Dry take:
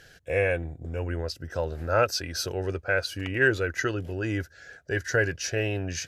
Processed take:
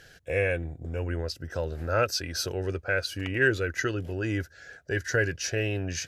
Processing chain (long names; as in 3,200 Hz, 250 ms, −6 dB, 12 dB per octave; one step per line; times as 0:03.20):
dynamic equaliser 840 Hz, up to −6 dB, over −38 dBFS, Q 1.3